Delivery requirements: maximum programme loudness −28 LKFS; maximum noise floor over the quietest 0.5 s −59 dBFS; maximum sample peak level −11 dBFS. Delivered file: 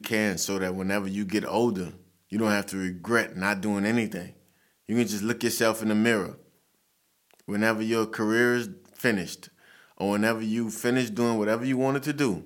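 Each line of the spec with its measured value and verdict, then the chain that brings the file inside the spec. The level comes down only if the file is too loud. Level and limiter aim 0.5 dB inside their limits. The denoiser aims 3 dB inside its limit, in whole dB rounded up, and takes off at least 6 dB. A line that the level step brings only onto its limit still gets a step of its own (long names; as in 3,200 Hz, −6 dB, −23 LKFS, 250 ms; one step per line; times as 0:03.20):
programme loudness −26.5 LKFS: out of spec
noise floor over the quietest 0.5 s −70 dBFS: in spec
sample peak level −7.0 dBFS: out of spec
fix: level −2 dB
brickwall limiter −11.5 dBFS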